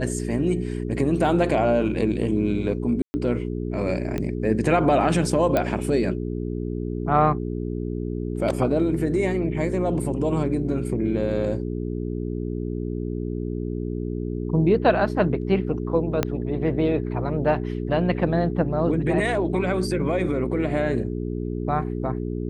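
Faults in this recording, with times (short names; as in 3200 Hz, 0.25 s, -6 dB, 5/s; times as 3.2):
hum 60 Hz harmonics 7 -28 dBFS
3.02–3.14 gap 0.12 s
4.18 pop -15 dBFS
5.57 pop -9 dBFS
16.23 pop -7 dBFS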